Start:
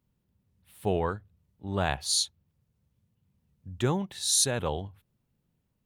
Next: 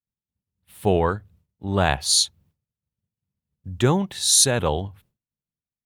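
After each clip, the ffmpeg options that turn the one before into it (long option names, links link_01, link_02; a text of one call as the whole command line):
ffmpeg -i in.wav -af "agate=range=-33dB:threshold=-57dB:ratio=3:detection=peak,volume=8dB" out.wav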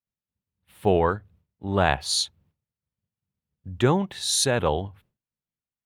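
ffmpeg -i in.wav -af "bass=frequency=250:gain=-3,treble=frequency=4000:gain=-9" out.wav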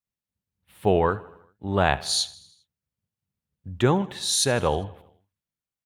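ffmpeg -i in.wav -af "aecho=1:1:79|158|237|316|395:0.0944|0.0557|0.0329|0.0194|0.0114" out.wav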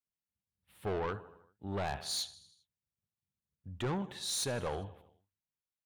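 ffmpeg -i in.wav -af "asoftclip=type=tanh:threshold=-21dB,volume=-9dB" out.wav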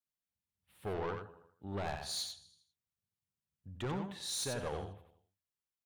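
ffmpeg -i in.wav -af "aecho=1:1:91:0.501,volume=-3.5dB" out.wav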